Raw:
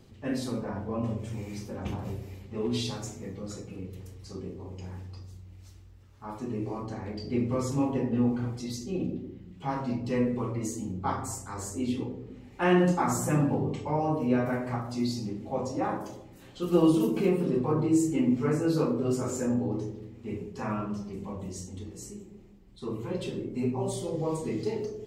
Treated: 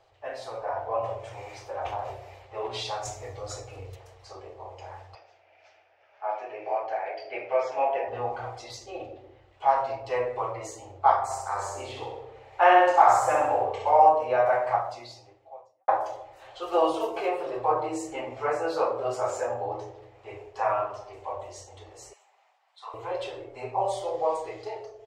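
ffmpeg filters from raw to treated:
ffmpeg -i in.wav -filter_complex "[0:a]asettb=1/sr,asplit=3[link_01][link_02][link_03];[link_01]atrim=end=3.054[link_04];[link_02]atrim=start=3.05:end=3.96,asetpts=PTS-STARTPTS,afade=type=in:duration=0.004:curve=qsin,afade=type=out:start_time=0.906:duration=0.004:curve=qsin,bass=frequency=250:gain=11,treble=frequency=4000:gain=10[link_05];[link_03]atrim=start=3.956[link_06];[link_04][link_05]acrossfade=duration=0.004:curve1=hsin:curve2=qsin[link_07];[link_07][link_06]acrossfade=duration=0.004:curve1=qsin:curve2=hsin,asettb=1/sr,asplit=3[link_08][link_09][link_10];[link_08]atrim=end=5.154[link_11];[link_09]atrim=start=5.15:end=8.08,asetpts=PTS-STARTPTS,afade=type=in:duration=0.004:curve=qsin,afade=type=out:start_time=2.926:duration=0.004:curve=qsin,highpass=340,equalizer=frequency=650:width_type=q:width=4:gain=5,equalizer=frequency=1100:width_type=q:width=4:gain=-8,equalizer=frequency=1600:width_type=q:width=4:gain=4,equalizer=frequency=2400:width_type=q:width=4:gain=9,equalizer=frequency=4000:width_type=q:width=4:gain=-8,lowpass=frequency=5100:width=0.5412,lowpass=frequency=5100:width=1.3066[link_12];[link_10]atrim=start=8.076[link_13];[link_11][link_12]acrossfade=duration=0.004:curve1=hsin:curve2=qsin[link_14];[link_14][link_13]acrossfade=duration=0.004:curve1=qsin:curve2=hsin,asettb=1/sr,asplit=3[link_15][link_16][link_17];[link_15]atrim=end=11.244[link_18];[link_16]atrim=start=11.24:end=14.09,asetpts=PTS-STARTPTS,afade=type=in:duration=0.004:curve=qsin,afade=type=out:start_time=2.846:duration=0.004:curve=qsin,aecho=1:1:64|128|192|256|320|384:0.631|0.303|0.145|0.0698|0.0335|0.0161,atrim=end_sample=125685[link_19];[link_17]atrim=start=14.086[link_20];[link_18][link_19]acrossfade=duration=0.004:curve1=hsin:curve2=qsin[link_21];[link_21][link_20]acrossfade=duration=0.004:curve1=qsin:curve2=hsin,asettb=1/sr,asplit=3[link_22][link_23][link_24];[link_22]atrim=end=22.134[link_25];[link_23]atrim=start=22.13:end=22.94,asetpts=PTS-STARTPTS,afade=type=in:duration=0.004:curve=qsin,afade=type=out:start_time=0.806:duration=0.004:curve=qsin,highpass=frequency=810:width=0.5412,highpass=frequency=810:width=1.3066[link_26];[link_24]atrim=start=22.936[link_27];[link_25][link_26]acrossfade=duration=0.004:curve1=hsin:curve2=qsin[link_28];[link_28][link_27]acrossfade=duration=0.004:curve1=qsin:curve2=hsin,asplit=2[link_29][link_30];[link_29]atrim=end=15.88,asetpts=PTS-STARTPTS,afade=type=out:start_time=14.74:duration=1.14:curve=qua[link_31];[link_30]atrim=start=15.88,asetpts=PTS-STARTPTS,afade=type=in:duration=0.004:curve=hsin[link_32];[link_31][link_32]concat=n=2:v=0:a=1,lowshelf=frequency=480:width_type=q:width=3:gain=-12.5,dynaudnorm=framelen=120:gausssize=11:maxgain=6dB,firequalizer=gain_entry='entry(120,0);entry(180,-30);entry(320,6);entry(970,2);entry(12000,-15)':delay=0.05:min_phase=1,volume=-2.5dB" out.wav

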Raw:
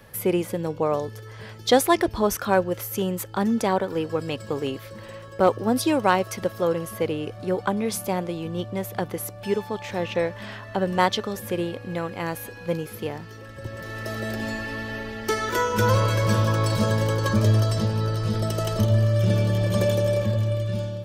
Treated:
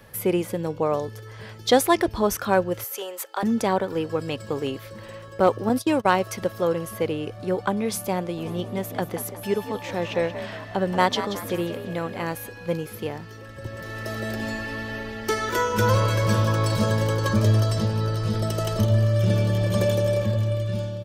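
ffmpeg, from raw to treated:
ffmpeg -i in.wav -filter_complex "[0:a]asettb=1/sr,asplit=3[link_01][link_02][link_03];[link_01]atrim=end=2.844[link_04];[link_02]atrim=start=2.84:end=3.43,asetpts=PTS-STARTPTS,afade=type=in:duration=0.004:curve=qsin,afade=type=out:start_time=0.586:duration=0.004:curve=qsin,highpass=frequency=480:width=0.5412,highpass=frequency=480:width=1.3066[link_05];[link_03]atrim=start=3.426[link_06];[link_04][link_05]acrossfade=duration=0.004:curve1=hsin:curve2=qsin[link_07];[link_07][link_06]acrossfade=duration=0.004:curve1=qsin:curve2=hsin,asettb=1/sr,asplit=3[link_08][link_09][link_10];[link_08]atrim=end=5.694[link_11];[link_09]atrim=start=5.69:end=6.15,asetpts=PTS-STARTPTS,afade=type=in:duration=0.004:curve=qsin,afade=type=out:start_time=0.456:duration=0.004:curve=qsin,agate=range=-21dB:threshold=-26dB:ratio=16:release=100:detection=peak[link_12];[link_10]atrim=start=6.146[link_13];[link_11][link_12]acrossfade=duration=0.004:curve1=hsin:curve2=qsin[link_14];[link_14][link_13]acrossfade=duration=0.004:curve1=qsin:curve2=hsin,asplit=3[link_15][link_16][link_17];[link_15]afade=type=out:start_time=8.37:duration=0.02[link_18];[link_16]asplit=5[link_19][link_20][link_21][link_22][link_23];[link_20]adelay=181,afreqshift=65,volume=-11dB[link_24];[link_21]adelay=362,afreqshift=130,volume=-18.3dB[link_25];[link_22]adelay=543,afreqshift=195,volume=-25.7dB[link_26];[link_23]adelay=724,afreqshift=260,volume=-33dB[link_27];[link_19][link_24][link_25][link_26][link_27]amix=inputs=5:normalize=0,afade=type=in:start_time=8.37:duration=0.02,afade=type=out:start_time=12.33:duration=0.02[link_28];[link_17]afade=type=in:start_time=12.33:duration=0.02[link_29];[link_18][link_28][link_29]amix=inputs=3:normalize=0" out.wav

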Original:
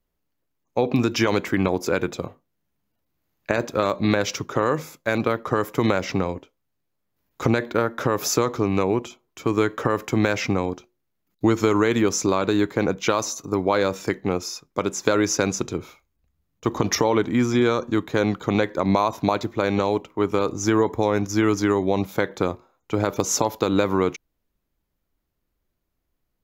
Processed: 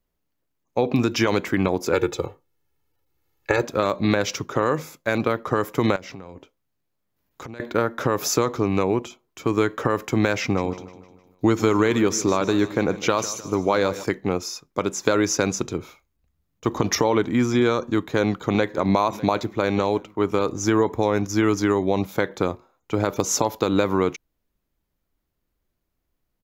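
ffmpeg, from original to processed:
ffmpeg -i in.wav -filter_complex "[0:a]asettb=1/sr,asplit=3[link_01][link_02][link_03];[link_01]atrim=end=1.934[link_04];[link_02]atrim=start=1.93:end=3.62,asetpts=PTS-STARTPTS,afade=type=in:duration=0.004:curve=qsin,afade=type=out:start_time=1.686:duration=0.004:curve=qsin,aecho=1:1:2.3:0.91,atrim=end_sample=74529[link_05];[link_03]atrim=start=3.616[link_06];[link_04][link_05]acrossfade=duration=0.004:curve1=hsin:curve2=qsin[link_07];[link_07][link_06]acrossfade=duration=0.004:curve1=qsin:curve2=hsin,asettb=1/sr,asplit=3[link_08][link_09][link_10];[link_08]atrim=end=5.964[link_11];[link_09]atrim=start=5.96:end=7.6,asetpts=PTS-STARTPTS,afade=type=in:duration=0.004:curve=qsin,afade=type=out:start_time=1.636:duration=0.004:curve=qsin,acompressor=threshold=-35dB:ratio=6:attack=3.2:release=140:knee=1:detection=peak[link_12];[link_10]atrim=start=7.596[link_13];[link_11][link_12]acrossfade=duration=0.004:curve1=hsin:curve2=qsin[link_14];[link_14][link_13]acrossfade=duration=0.004:curve1=qsin:curve2=hsin,asettb=1/sr,asplit=3[link_15][link_16][link_17];[link_15]atrim=end=10.424[link_18];[link_16]atrim=start=10.42:end=14.04,asetpts=PTS-STARTPTS,afade=type=in:duration=0.004:curve=qsin,afade=type=out:start_time=3.616:duration=0.004:curve=qsin,aecho=1:1:153|306|459|612|765:0.168|0.0839|0.042|0.021|0.0105,atrim=end_sample=159642[link_19];[link_17]atrim=start=14.036[link_20];[link_18][link_19]acrossfade=duration=0.004:curve1=hsin:curve2=qsin[link_21];[link_21][link_20]acrossfade=duration=0.004:curve1=qsin:curve2=hsin,asplit=2[link_22][link_23];[link_23]afade=type=in:start_time=17.93:duration=0.01,afade=type=out:start_time=18.79:duration=0.01,aecho=0:1:600|1200|1800|2400:0.125893|0.0629463|0.0314731|0.0157366[link_24];[link_22][link_24]amix=inputs=2:normalize=0" out.wav

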